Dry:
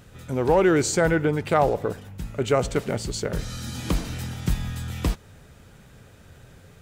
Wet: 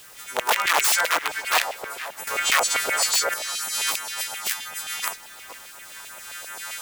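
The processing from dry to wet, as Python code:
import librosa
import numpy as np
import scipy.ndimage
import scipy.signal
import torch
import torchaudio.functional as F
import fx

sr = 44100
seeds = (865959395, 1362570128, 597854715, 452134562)

p1 = fx.freq_snap(x, sr, grid_st=2)
p2 = fx.recorder_agc(p1, sr, target_db=-14.0, rise_db_per_s=9.9, max_gain_db=30)
p3 = fx.filter_lfo_notch(p2, sr, shape='sine', hz=2.8, low_hz=370.0, high_hz=4900.0, q=0.92)
p4 = (np.mod(10.0 ** (14.5 / 20.0) * p3 + 1.0, 2.0) - 1.0) / 10.0 ** (14.5 / 20.0)
p5 = p4 + fx.echo_tape(p4, sr, ms=463, feedback_pct=50, wet_db=-11.0, lp_hz=2900.0, drive_db=16.0, wow_cents=15, dry=0)
p6 = fx.filter_lfo_highpass(p5, sr, shape='saw_down', hz=7.6, low_hz=640.0, high_hz=2700.0, q=2.3)
p7 = fx.quant_dither(p6, sr, seeds[0], bits=8, dither='triangular')
y = fx.env_flatten(p7, sr, amount_pct=50, at=(2.27, 3.34))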